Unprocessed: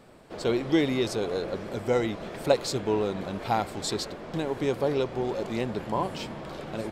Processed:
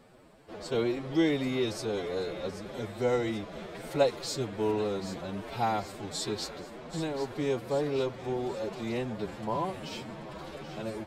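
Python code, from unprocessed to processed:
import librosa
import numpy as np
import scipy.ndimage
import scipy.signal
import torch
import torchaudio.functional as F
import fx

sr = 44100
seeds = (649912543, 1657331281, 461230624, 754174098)

y = fx.stretch_vocoder(x, sr, factor=1.6)
y = fx.echo_wet_highpass(y, sr, ms=782, feedback_pct=55, hz=1600.0, wet_db=-11)
y = y * 10.0 ** (-3.5 / 20.0)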